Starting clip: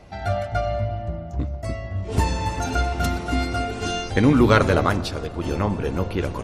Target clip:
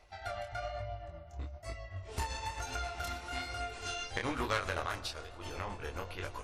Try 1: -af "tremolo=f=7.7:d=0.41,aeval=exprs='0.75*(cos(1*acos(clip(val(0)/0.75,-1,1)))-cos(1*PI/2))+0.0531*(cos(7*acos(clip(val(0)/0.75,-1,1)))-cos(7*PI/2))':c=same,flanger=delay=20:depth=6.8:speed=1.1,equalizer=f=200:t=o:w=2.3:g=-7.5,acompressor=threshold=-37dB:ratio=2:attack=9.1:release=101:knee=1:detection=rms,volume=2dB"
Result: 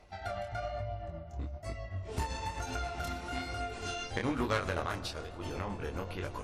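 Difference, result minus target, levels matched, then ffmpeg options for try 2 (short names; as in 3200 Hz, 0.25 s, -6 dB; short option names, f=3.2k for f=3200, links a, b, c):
250 Hz band +4.5 dB
-af "tremolo=f=7.7:d=0.41,aeval=exprs='0.75*(cos(1*acos(clip(val(0)/0.75,-1,1)))-cos(1*PI/2))+0.0531*(cos(7*acos(clip(val(0)/0.75,-1,1)))-cos(7*PI/2))':c=same,flanger=delay=20:depth=6.8:speed=1.1,equalizer=f=200:t=o:w=2.3:g=-19,acompressor=threshold=-37dB:ratio=2:attack=9.1:release=101:knee=1:detection=rms,volume=2dB"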